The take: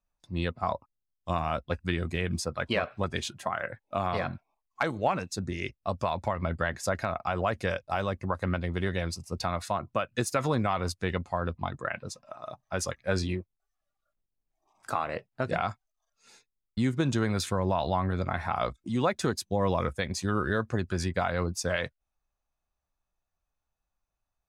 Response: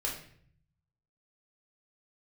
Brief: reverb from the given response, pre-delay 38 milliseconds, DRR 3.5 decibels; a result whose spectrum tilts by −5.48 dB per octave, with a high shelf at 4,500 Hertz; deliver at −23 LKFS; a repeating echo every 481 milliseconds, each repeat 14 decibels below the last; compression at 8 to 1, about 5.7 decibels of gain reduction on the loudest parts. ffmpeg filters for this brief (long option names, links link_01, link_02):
-filter_complex "[0:a]highshelf=frequency=4500:gain=-4.5,acompressor=threshold=-28dB:ratio=8,aecho=1:1:481|962:0.2|0.0399,asplit=2[link_01][link_02];[1:a]atrim=start_sample=2205,adelay=38[link_03];[link_02][link_03]afir=irnorm=-1:irlink=0,volume=-7.5dB[link_04];[link_01][link_04]amix=inputs=2:normalize=0,volume=11dB"